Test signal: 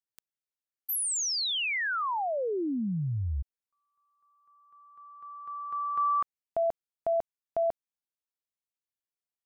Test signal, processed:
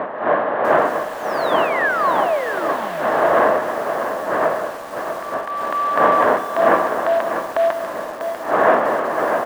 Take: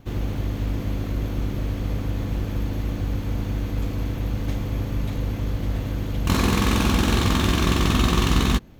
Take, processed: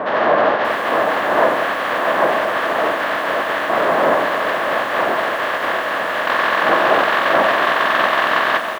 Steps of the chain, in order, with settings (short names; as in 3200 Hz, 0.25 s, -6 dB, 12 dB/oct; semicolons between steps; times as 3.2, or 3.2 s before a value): spectral contrast lowered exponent 0.32; wind noise 570 Hz -24 dBFS; in parallel at +1 dB: compressor, threshold -32 dBFS; on the sum: soft clip -9.5 dBFS; speaker cabinet 410–2900 Hz, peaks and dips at 410 Hz -3 dB, 630 Hz +9 dB, 1100 Hz +8 dB, 1700 Hz +9 dB, 2400 Hz -5 dB; feedback echo 0.159 s, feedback 49%, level -15.5 dB; lo-fi delay 0.645 s, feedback 35%, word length 6-bit, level -8 dB; gain +2.5 dB